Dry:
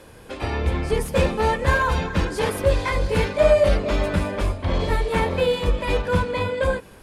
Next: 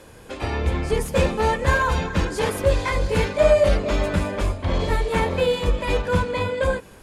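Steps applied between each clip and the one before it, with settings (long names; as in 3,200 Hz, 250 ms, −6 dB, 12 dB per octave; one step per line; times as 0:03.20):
parametric band 6,900 Hz +4.5 dB 0.34 octaves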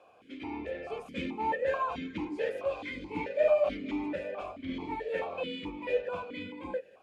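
formant filter that steps through the vowels 4.6 Hz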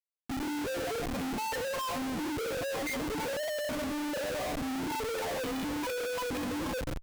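expanding power law on the bin magnitudes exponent 2
echo with a time of its own for lows and highs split 540 Hz, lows 280 ms, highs 130 ms, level −15 dB
comparator with hysteresis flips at −46.5 dBFS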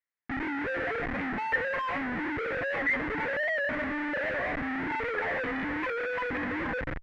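low-pass with resonance 1,900 Hz, resonance Q 5.1
wow of a warped record 78 rpm, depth 100 cents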